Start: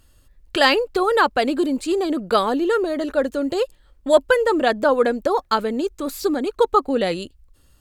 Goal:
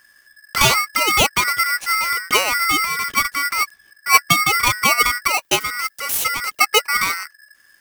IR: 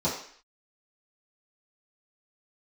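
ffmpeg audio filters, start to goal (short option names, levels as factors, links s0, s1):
-filter_complex "[0:a]asettb=1/sr,asplit=3[s0][s1][s2];[s0]atrim=end=5.314[s3];[s1]atrim=start=5.31:end=6.61,asetpts=PTS-STARTPTS,afade=t=in:d=0.004:c=qsin,afade=t=out:st=1.296:d=0.004:c=qsin,aemphasis=mode=production:type=bsi[s4];[s2]atrim=start=6.606[s5];[s3][s4]acrossfade=d=0.004:c1=hsin:c2=qsin[s6];[s6][s5]acrossfade=d=0.004:c1=qsin:c2=hsin,aeval=exprs='val(0)*sgn(sin(2*PI*1700*n/s))':c=same,volume=1.12"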